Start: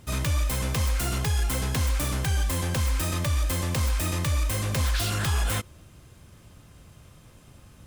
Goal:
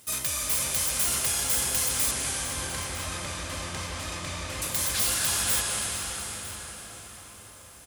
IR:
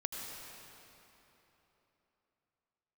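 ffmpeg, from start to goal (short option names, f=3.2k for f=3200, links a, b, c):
-filter_complex "[0:a]aemphasis=mode=production:type=riaa,asoftclip=type=tanh:threshold=-10.5dB,asettb=1/sr,asplit=3[a][b][c];[a]atrim=end=2.114[d];[b]atrim=start=2.11:end=4.62,asetpts=PTS-STARTPTS,afade=t=in:d=0.004:c=qsin,afade=t=out:st=2.506:d=0.004:c=qsin,adynamicsmooth=sensitivity=1:basefreq=3.4k[e];[c]atrim=start=4.616[f];[d][e]acrossfade=d=0.004:c1=hsin:c2=qsin[g];[g][f]acrossfade=d=0.004:c1=qsin:c2=hsin,aecho=1:1:953:0.133[h];[1:a]atrim=start_sample=2205,asetrate=22491,aresample=44100[i];[h][i]afir=irnorm=-1:irlink=0,volume=-6.5dB"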